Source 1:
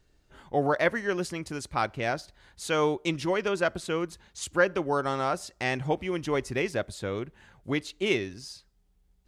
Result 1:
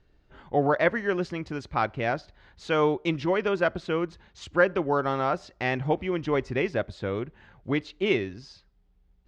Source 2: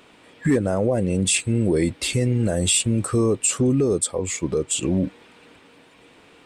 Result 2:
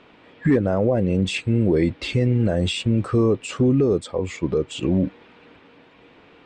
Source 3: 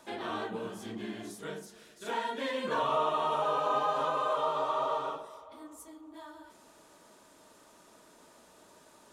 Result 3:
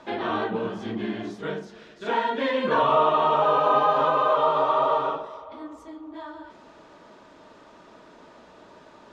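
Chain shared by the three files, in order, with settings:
air absorption 200 m; normalise peaks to -9 dBFS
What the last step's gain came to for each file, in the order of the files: +3.0, +2.0, +10.0 dB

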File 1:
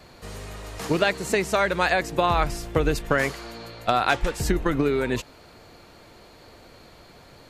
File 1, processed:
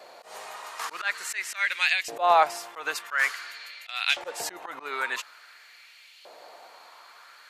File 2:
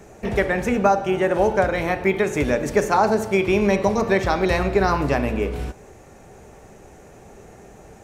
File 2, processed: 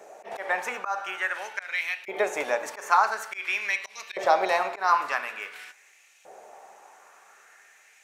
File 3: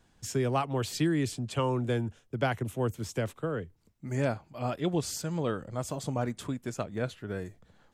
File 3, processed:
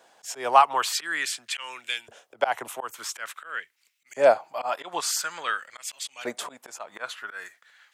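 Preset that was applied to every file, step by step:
auto swell 0.139 s; LFO high-pass saw up 0.48 Hz 570–2900 Hz; match loudness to -27 LUFS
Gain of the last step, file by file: -0.5, -3.5, +9.5 dB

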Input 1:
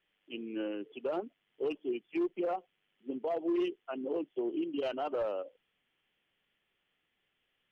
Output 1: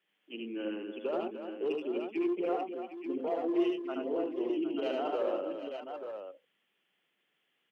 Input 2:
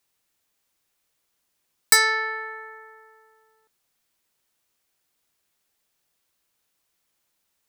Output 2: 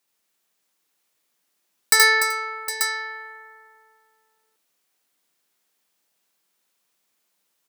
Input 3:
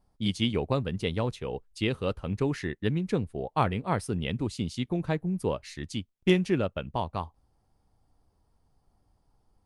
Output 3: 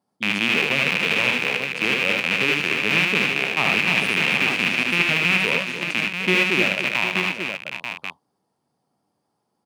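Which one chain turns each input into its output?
rattling part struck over -36 dBFS, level -7 dBFS; HPF 160 Hz 24 dB/oct; tapped delay 75/95/294/381/761/887 ms -3/-9.5/-9/-19.5/-12.5/-7 dB; gain -1 dB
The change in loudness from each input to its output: +1.5, +0.5, +11.0 LU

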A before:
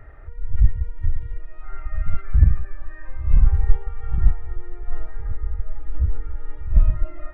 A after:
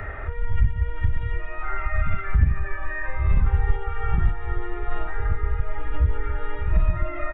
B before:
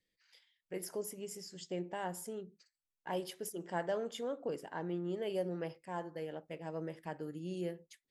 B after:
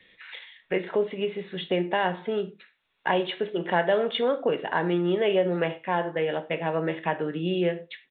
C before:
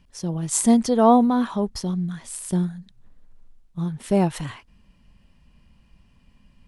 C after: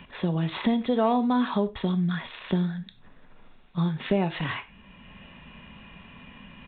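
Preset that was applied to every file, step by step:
tilt +2.5 dB/oct; notch 3100 Hz, Q 13; soft clip -4.5 dBFS; downsampling 8000 Hz; dynamic EQ 1100 Hz, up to -3 dB, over -40 dBFS, Q 0.91; compressor 2.5:1, threshold -30 dBFS; non-linear reverb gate 0.13 s falling, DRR 9.5 dB; three-band squash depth 40%; match loudness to -27 LUFS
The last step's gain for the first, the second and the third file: +13.5, +16.5, +7.0 dB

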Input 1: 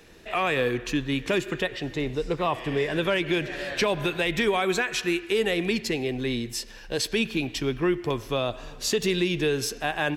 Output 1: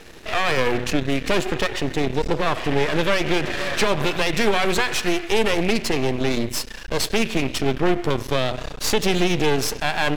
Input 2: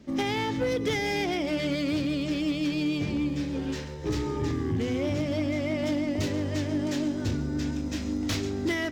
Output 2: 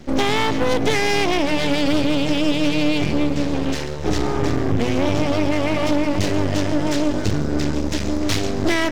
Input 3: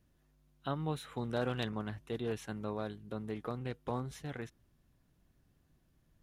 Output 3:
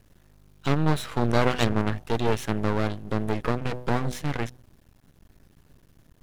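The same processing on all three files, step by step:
de-hum 124.3 Hz, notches 6; in parallel at +1 dB: limiter -24.5 dBFS; on the sum: half-wave rectifier; Doppler distortion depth 0.14 ms; normalise peaks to -6 dBFS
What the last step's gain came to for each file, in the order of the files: +5.5, +8.0, +11.0 dB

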